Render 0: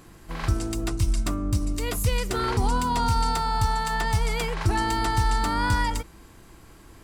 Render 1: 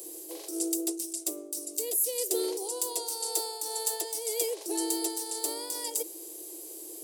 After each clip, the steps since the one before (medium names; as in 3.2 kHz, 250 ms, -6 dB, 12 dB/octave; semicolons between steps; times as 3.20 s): FFT filter 520 Hz 0 dB, 1.4 kHz -28 dB, 3.3 kHz -7 dB, 11 kHz +14 dB; reverse; compression 6:1, threshold -31 dBFS, peak gain reduction 14 dB; reverse; Chebyshev high-pass 310 Hz, order 10; trim +8 dB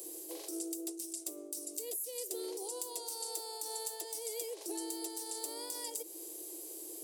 compression, threshold -34 dBFS, peak gain reduction 10.5 dB; trim -3 dB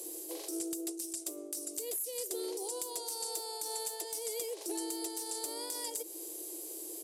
in parallel at -9 dB: integer overflow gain 30 dB; on the sum: resampled via 32 kHz